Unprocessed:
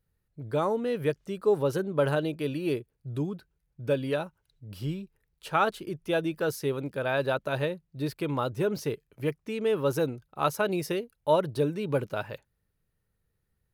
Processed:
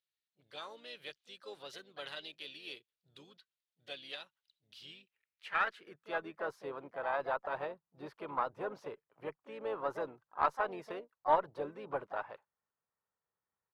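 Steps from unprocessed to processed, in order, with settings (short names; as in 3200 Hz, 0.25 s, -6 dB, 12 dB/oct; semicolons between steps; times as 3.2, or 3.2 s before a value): harmoniser -5 st -15 dB, +4 st -10 dB; band-pass sweep 3600 Hz -> 1000 Hz, 4.78–6.44; added harmonics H 4 -25 dB, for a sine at -15 dBFS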